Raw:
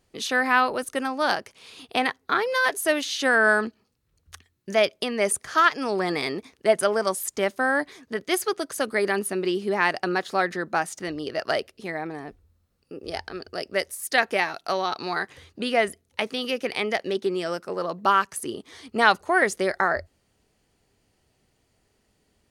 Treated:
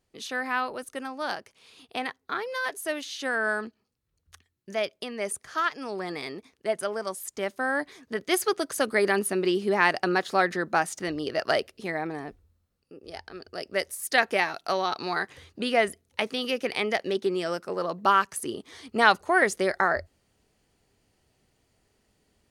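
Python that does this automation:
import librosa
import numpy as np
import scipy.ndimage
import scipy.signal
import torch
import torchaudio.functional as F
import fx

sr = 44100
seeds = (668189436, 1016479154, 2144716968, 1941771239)

y = fx.gain(x, sr, db=fx.line((7.12, -8.0), (8.49, 0.5), (12.22, 0.5), (13.04, -9.5), (13.91, -1.0)))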